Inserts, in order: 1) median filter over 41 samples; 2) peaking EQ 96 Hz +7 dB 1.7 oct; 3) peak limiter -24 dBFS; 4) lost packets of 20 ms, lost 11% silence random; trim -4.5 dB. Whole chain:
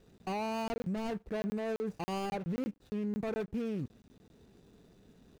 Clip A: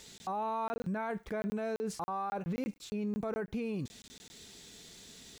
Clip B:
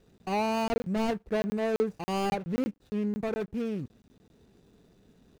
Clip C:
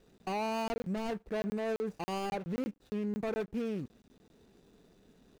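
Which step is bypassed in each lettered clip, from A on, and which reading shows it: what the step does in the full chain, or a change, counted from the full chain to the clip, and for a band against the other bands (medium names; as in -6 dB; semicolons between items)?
1, 8 kHz band +7.0 dB; 3, mean gain reduction 3.5 dB; 2, 125 Hz band -3.5 dB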